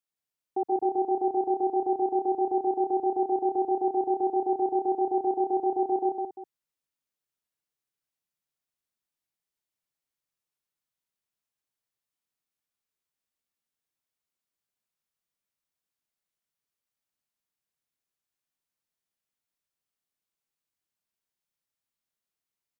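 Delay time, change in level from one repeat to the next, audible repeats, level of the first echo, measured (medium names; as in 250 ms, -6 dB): 122 ms, no regular repeats, 3, -16.0 dB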